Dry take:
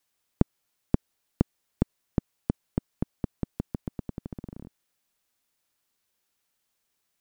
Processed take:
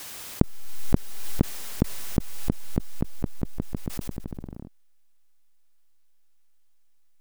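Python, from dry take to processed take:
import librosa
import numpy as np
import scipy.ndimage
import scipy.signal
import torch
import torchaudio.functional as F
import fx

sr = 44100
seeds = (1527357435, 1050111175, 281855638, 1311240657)

p1 = fx.backlash(x, sr, play_db=-34.0)
p2 = x + (p1 * 10.0 ** (-4.0 / 20.0))
p3 = fx.pre_swell(p2, sr, db_per_s=29.0)
y = p3 * 10.0 ** (-1.5 / 20.0)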